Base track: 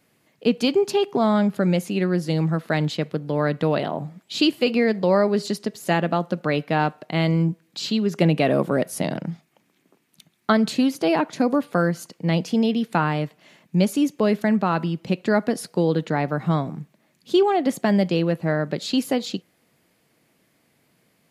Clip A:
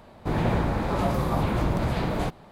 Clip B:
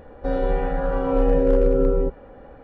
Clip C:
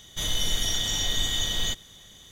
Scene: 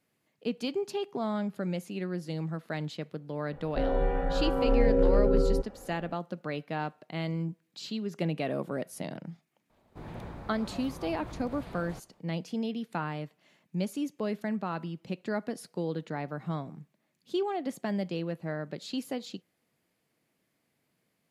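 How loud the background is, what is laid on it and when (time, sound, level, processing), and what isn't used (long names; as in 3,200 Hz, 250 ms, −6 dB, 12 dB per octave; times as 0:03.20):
base track −12.5 dB
0:03.52: mix in B −5.5 dB
0:09.70: mix in A −18 dB
not used: C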